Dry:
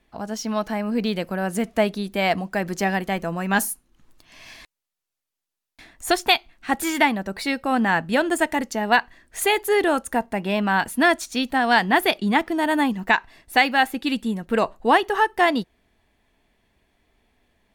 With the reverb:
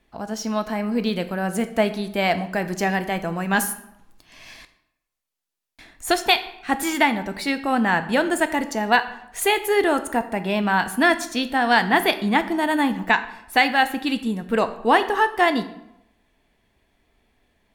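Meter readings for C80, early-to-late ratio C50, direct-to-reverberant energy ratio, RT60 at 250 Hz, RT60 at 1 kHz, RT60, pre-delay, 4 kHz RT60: 15.5 dB, 13.5 dB, 10.0 dB, 0.75 s, 0.85 s, 0.85 s, 14 ms, 0.55 s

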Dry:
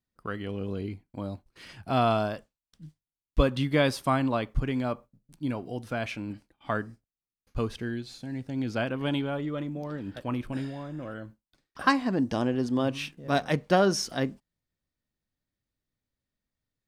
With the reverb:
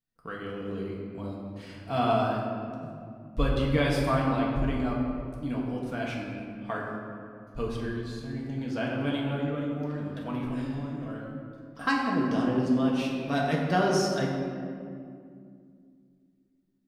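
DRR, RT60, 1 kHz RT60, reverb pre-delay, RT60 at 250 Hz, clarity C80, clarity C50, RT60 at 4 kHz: -3.5 dB, 2.3 s, 2.1 s, 4 ms, 3.4 s, 2.5 dB, 1.0 dB, 1.3 s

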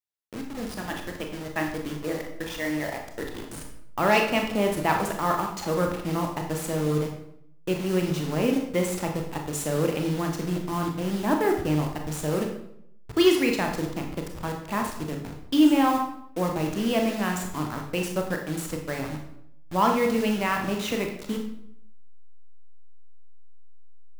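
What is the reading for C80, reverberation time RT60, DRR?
9.0 dB, 0.75 s, 2.5 dB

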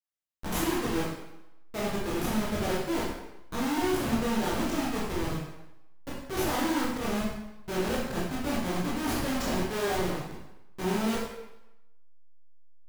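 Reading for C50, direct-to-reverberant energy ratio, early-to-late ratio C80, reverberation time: 0.5 dB, -6.5 dB, 3.5 dB, 0.90 s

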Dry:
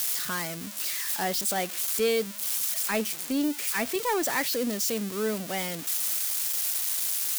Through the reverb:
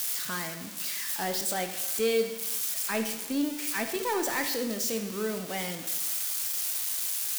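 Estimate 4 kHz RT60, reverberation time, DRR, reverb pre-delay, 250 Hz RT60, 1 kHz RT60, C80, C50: 0.85 s, 1.0 s, 6.0 dB, 18 ms, 1.0 s, 1.0 s, 10.5 dB, 8.0 dB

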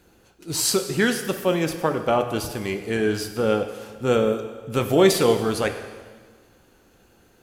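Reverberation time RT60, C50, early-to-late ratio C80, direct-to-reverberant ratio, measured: 1.5 s, 9.0 dB, 10.5 dB, 7.0 dB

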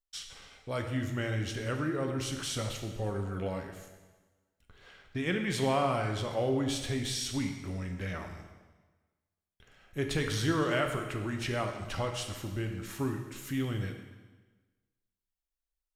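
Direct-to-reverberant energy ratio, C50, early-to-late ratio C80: 3.5 dB, 6.0 dB, 8.0 dB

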